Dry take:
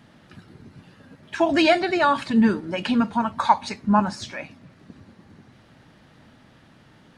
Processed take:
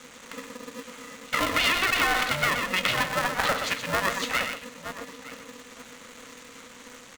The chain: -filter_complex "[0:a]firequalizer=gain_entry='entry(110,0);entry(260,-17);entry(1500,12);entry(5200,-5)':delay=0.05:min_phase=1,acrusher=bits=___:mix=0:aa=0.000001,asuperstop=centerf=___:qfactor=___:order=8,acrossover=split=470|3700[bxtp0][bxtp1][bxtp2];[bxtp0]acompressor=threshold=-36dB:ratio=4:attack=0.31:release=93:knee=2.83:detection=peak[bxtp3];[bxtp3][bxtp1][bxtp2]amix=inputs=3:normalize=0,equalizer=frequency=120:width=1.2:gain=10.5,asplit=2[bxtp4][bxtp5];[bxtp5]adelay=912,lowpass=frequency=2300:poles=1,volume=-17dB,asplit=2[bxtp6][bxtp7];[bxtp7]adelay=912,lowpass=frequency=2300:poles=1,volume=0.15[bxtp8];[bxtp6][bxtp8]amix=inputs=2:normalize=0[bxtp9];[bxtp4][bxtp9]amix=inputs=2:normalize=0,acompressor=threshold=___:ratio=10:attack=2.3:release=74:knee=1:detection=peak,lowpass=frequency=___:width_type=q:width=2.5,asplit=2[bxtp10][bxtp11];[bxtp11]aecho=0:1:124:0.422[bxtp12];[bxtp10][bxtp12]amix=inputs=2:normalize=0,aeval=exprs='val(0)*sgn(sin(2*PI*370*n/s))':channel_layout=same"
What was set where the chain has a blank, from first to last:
7, 5100, 3.7, -20dB, 6800